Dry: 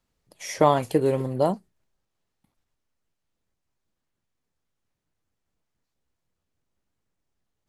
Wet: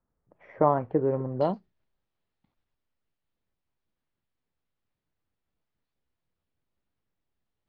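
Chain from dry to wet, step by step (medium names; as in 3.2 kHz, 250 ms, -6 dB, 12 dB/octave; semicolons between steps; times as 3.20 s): low-pass 1.5 kHz 24 dB/octave, from 1.41 s 4.4 kHz; trim -3.5 dB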